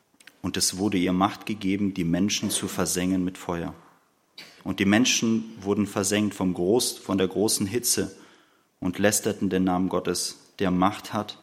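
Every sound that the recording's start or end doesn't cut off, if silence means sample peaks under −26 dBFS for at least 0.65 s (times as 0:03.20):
0:04.66–0:08.06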